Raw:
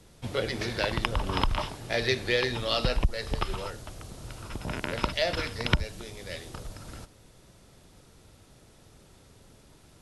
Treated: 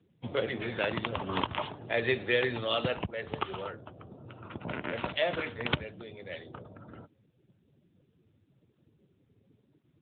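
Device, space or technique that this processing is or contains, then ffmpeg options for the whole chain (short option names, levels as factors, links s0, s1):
mobile call with aggressive noise cancelling: -af "highpass=f=130:p=1,afftdn=nr=28:nf=-48" -ar 8000 -c:a libopencore_amrnb -b:a 10200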